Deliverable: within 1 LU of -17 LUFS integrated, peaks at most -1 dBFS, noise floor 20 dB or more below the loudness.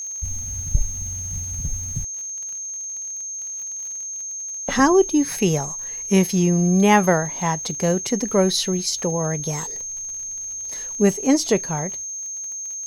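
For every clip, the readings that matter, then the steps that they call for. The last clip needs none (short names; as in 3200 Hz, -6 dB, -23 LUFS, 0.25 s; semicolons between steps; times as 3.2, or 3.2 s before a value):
ticks 35/s; steady tone 6400 Hz; tone level -28 dBFS; loudness -22.0 LUFS; peak -3.5 dBFS; loudness target -17.0 LUFS
-> de-click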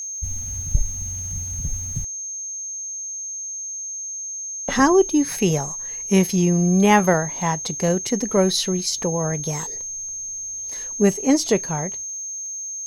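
ticks 0.39/s; steady tone 6400 Hz; tone level -28 dBFS
-> notch 6400 Hz, Q 30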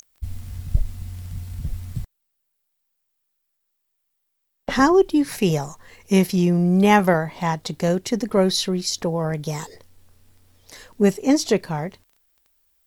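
steady tone none; loudness -21.0 LUFS; peak -3.5 dBFS; loudness target -17.0 LUFS
-> gain +4 dB; limiter -1 dBFS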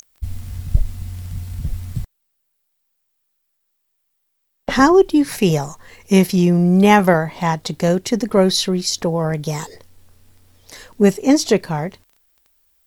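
loudness -17.0 LUFS; peak -1.0 dBFS; noise floor -71 dBFS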